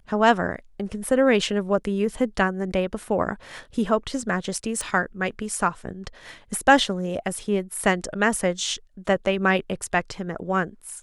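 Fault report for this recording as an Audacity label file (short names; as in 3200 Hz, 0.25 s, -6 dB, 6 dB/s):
4.810000	4.810000	pop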